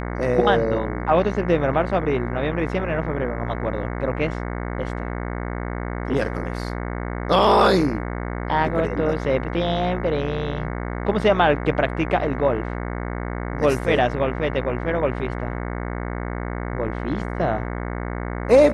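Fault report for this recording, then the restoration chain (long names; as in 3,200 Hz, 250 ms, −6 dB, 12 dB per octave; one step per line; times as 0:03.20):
mains buzz 60 Hz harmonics 37 −28 dBFS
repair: hum removal 60 Hz, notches 37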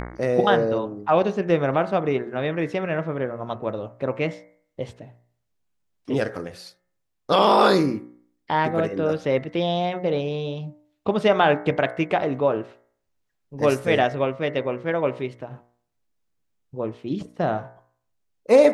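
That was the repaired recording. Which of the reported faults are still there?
none of them is left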